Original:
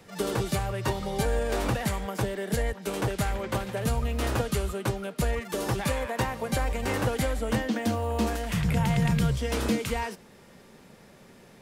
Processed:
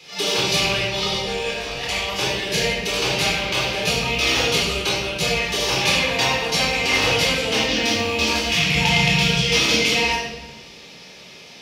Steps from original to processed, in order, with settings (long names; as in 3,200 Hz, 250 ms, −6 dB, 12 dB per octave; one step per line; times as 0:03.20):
loose part that buzzes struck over −28 dBFS, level −32 dBFS
high-pass filter 320 Hz 6 dB per octave
flat-topped bell 3,800 Hz +15 dB
0:00.65–0:01.89: compressor whose output falls as the input rises −31 dBFS, ratio −0.5
convolution reverb RT60 1.2 s, pre-delay 12 ms, DRR −6 dB
level −2 dB